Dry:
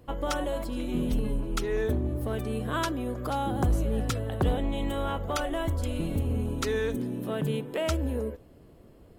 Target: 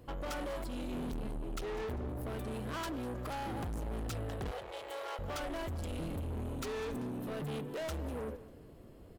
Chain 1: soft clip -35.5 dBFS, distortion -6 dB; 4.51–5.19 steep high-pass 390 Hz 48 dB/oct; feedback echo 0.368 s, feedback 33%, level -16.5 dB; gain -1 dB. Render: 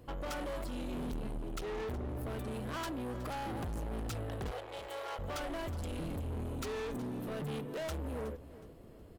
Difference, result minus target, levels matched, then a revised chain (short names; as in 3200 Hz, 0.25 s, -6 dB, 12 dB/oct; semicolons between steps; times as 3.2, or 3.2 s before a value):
echo 0.17 s late
soft clip -35.5 dBFS, distortion -6 dB; 4.51–5.19 steep high-pass 390 Hz 48 dB/oct; feedback echo 0.198 s, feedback 33%, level -16.5 dB; gain -1 dB